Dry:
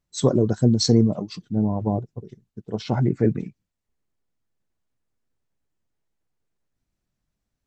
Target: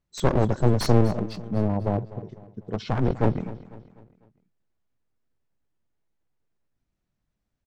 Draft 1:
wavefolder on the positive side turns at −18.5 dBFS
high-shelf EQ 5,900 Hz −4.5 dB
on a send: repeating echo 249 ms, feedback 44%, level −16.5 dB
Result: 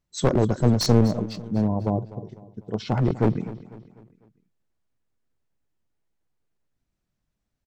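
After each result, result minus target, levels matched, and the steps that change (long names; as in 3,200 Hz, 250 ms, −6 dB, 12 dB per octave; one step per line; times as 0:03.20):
wavefolder on the positive side: distortion −8 dB; 8,000 Hz band +4.0 dB
change: wavefolder on the positive side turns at −25 dBFS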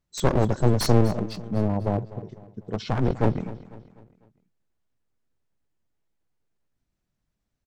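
8,000 Hz band +4.0 dB
change: high-shelf EQ 5,900 Hz −11.5 dB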